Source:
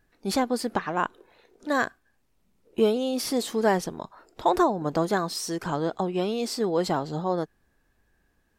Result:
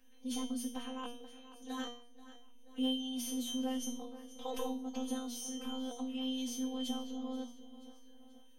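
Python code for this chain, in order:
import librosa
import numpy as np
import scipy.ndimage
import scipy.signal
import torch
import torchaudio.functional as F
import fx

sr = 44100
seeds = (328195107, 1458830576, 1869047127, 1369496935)

y = fx.echo_feedback(x, sr, ms=482, feedback_pct=36, wet_db=-20.5)
y = fx.transient(y, sr, attack_db=-5, sustain_db=2)
y = fx.robotise(y, sr, hz=212.0)
y = fx.pitch_keep_formants(y, sr, semitones=3.5)
y = fx.comb_fb(y, sr, f0_hz=240.0, decay_s=0.42, harmonics='all', damping=0.0, mix_pct=100)
y = fx.band_squash(y, sr, depth_pct=40)
y = y * librosa.db_to_amplitude(9.5)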